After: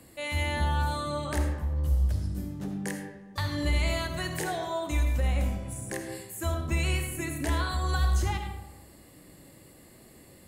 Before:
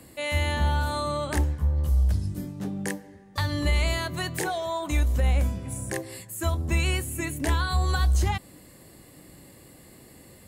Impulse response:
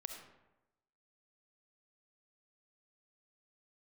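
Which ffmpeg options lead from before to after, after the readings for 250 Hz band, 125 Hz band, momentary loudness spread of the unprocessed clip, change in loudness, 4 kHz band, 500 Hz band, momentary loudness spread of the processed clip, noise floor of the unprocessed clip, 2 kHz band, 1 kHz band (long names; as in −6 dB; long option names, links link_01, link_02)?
−2.0 dB, −3.5 dB, 9 LU, −3.0 dB, −3.5 dB, −3.0 dB, 9 LU, −51 dBFS, −3.0 dB, −2.5 dB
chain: -filter_complex "[1:a]atrim=start_sample=2205[link_01];[0:a][link_01]afir=irnorm=-1:irlink=0"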